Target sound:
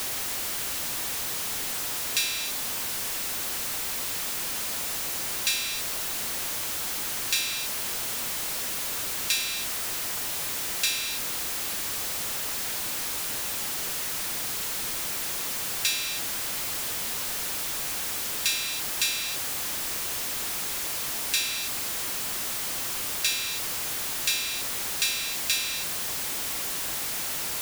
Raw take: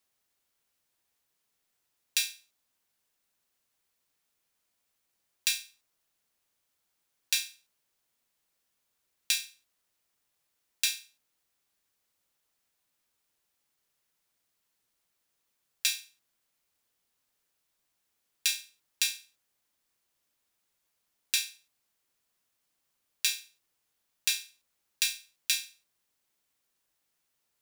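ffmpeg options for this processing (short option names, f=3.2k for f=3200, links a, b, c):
-af "aeval=exprs='val(0)+0.5*0.0708*sgn(val(0))':c=same,volume=-1.5dB"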